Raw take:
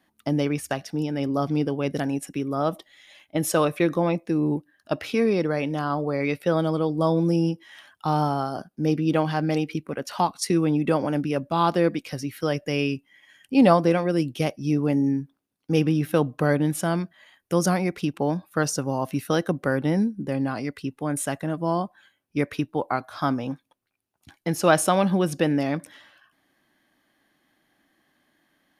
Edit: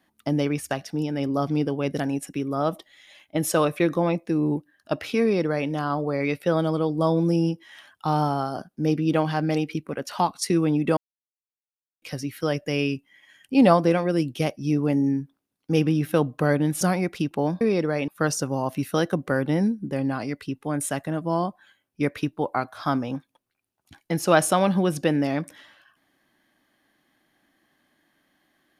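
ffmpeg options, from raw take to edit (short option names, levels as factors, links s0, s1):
-filter_complex "[0:a]asplit=6[s0][s1][s2][s3][s4][s5];[s0]atrim=end=10.97,asetpts=PTS-STARTPTS,afade=t=out:st=10.966:d=0.004:c=hsin[s6];[s1]atrim=start=10.97:end=12.02,asetpts=PTS-STARTPTS,volume=0[s7];[s2]atrim=start=12.02:end=16.812,asetpts=PTS-STARTPTS,afade=t=in:d=0.004:c=hsin[s8];[s3]atrim=start=17.638:end=18.442[s9];[s4]atrim=start=5.218:end=5.692[s10];[s5]atrim=start=18.438[s11];[s6][s7][s8]concat=n=3:v=0:a=1[s12];[s12][s9]acrossfade=d=0.004:c1=hsin:c2=hsin[s13];[s13][s10]acrossfade=d=0.004:c1=hsin:c2=hsin[s14];[s14][s11]acrossfade=d=0.004:c1=hsin:c2=hsin"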